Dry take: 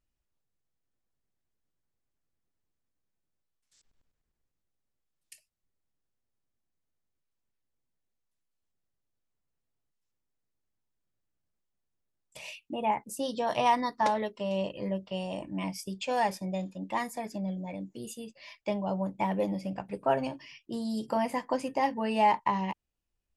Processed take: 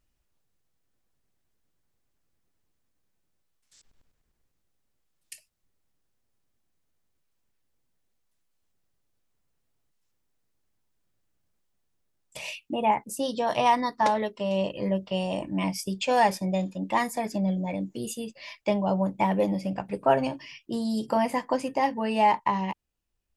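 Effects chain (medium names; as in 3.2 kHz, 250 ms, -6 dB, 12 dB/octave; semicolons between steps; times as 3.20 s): gain riding within 4 dB 2 s; trim +4 dB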